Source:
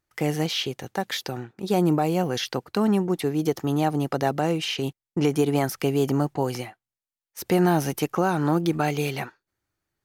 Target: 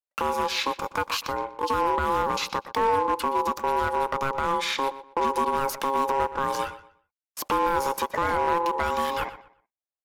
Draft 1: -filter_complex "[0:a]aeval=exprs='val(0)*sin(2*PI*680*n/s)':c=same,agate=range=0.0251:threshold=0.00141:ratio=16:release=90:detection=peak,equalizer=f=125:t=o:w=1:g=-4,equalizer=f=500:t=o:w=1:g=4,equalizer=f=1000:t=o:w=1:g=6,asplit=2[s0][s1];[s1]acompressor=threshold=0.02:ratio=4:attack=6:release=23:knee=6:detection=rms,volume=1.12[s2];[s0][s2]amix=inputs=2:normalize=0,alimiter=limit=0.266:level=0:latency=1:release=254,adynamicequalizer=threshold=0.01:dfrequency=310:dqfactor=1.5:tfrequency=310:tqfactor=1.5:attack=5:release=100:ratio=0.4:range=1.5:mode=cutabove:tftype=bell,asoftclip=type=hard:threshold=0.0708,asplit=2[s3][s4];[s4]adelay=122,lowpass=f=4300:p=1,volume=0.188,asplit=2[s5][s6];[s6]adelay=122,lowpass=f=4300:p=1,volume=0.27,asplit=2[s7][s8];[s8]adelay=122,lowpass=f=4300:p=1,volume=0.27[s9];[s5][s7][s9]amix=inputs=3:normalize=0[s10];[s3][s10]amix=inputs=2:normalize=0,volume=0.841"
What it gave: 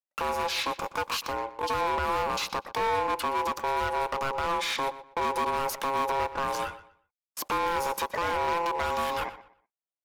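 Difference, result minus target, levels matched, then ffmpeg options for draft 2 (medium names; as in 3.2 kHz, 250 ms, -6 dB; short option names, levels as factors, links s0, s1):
hard clipper: distortion +10 dB; compression: peak gain reduction +5.5 dB
-filter_complex "[0:a]aeval=exprs='val(0)*sin(2*PI*680*n/s)':c=same,agate=range=0.0251:threshold=0.00141:ratio=16:release=90:detection=peak,equalizer=f=125:t=o:w=1:g=-4,equalizer=f=500:t=o:w=1:g=4,equalizer=f=1000:t=o:w=1:g=6,asplit=2[s0][s1];[s1]acompressor=threshold=0.0473:ratio=4:attack=6:release=23:knee=6:detection=rms,volume=1.12[s2];[s0][s2]amix=inputs=2:normalize=0,alimiter=limit=0.266:level=0:latency=1:release=254,adynamicequalizer=threshold=0.01:dfrequency=310:dqfactor=1.5:tfrequency=310:tqfactor=1.5:attack=5:release=100:ratio=0.4:range=1.5:mode=cutabove:tftype=bell,asoftclip=type=hard:threshold=0.158,asplit=2[s3][s4];[s4]adelay=122,lowpass=f=4300:p=1,volume=0.188,asplit=2[s5][s6];[s6]adelay=122,lowpass=f=4300:p=1,volume=0.27,asplit=2[s7][s8];[s8]adelay=122,lowpass=f=4300:p=1,volume=0.27[s9];[s5][s7][s9]amix=inputs=3:normalize=0[s10];[s3][s10]amix=inputs=2:normalize=0,volume=0.841"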